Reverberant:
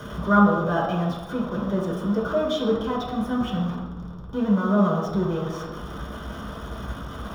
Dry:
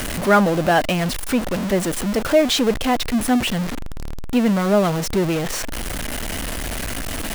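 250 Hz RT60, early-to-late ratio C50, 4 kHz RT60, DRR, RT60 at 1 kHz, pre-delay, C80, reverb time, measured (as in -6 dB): 1.6 s, 2.0 dB, 0.80 s, -6.0 dB, 1.1 s, 3 ms, 4.5 dB, 1.2 s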